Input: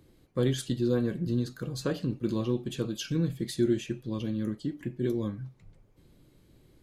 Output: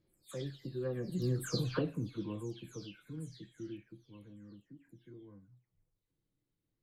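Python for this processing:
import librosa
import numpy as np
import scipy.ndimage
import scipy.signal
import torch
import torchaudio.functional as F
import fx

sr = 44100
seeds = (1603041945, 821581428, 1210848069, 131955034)

y = fx.spec_delay(x, sr, highs='early', ms=284)
y = fx.doppler_pass(y, sr, speed_mps=17, closest_m=3.4, pass_at_s=1.53)
y = y * librosa.db_to_amplitude(2.0)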